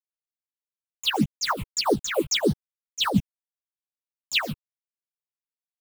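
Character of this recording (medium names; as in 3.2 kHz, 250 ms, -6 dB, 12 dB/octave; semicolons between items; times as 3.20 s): a quantiser's noise floor 6-bit, dither none; phasing stages 8, 1.7 Hz, lowest notch 210–2400 Hz; chopped level 7 Hz, depth 65%, duty 60%; a shimmering, thickened sound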